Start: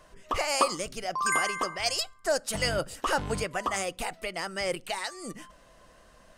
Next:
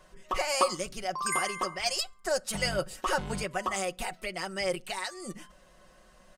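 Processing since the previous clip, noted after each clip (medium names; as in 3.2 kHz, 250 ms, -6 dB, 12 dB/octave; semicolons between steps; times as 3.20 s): comb 5.4 ms; trim -3 dB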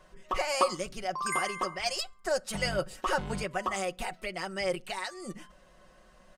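treble shelf 5.2 kHz -6 dB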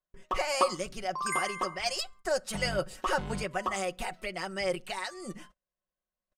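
gate -50 dBFS, range -37 dB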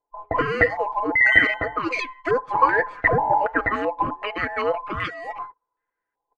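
every band turned upside down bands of 1 kHz; step-sequenced low-pass 2.6 Hz 810–2300 Hz; trim +6 dB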